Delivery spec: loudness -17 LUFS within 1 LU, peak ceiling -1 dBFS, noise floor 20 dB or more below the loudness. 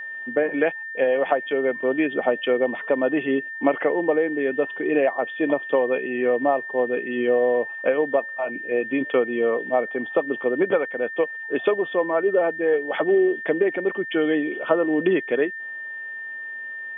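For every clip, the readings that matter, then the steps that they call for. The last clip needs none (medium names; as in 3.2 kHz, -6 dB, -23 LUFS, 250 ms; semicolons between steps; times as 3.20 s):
steady tone 1.8 kHz; tone level -31 dBFS; loudness -23.0 LUFS; peak level -5.0 dBFS; loudness target -17.0 LUFS
-> band-stop 1.8 kHz, Q 30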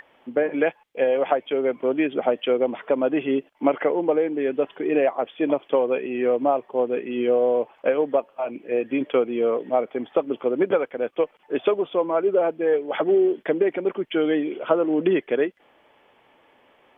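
steady tone not found; loudness -23.5 LUFS; peak level -5.5 dBFS; loudness target -17.0 LUFS
-> trim +6.5 dB; peak limiter -1 dBFS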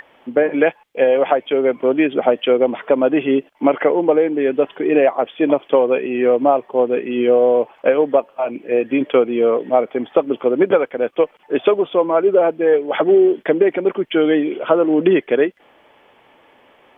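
loudness -17.0 LUFS; peak level -1.0 dBFS; noise floor -52 dBFS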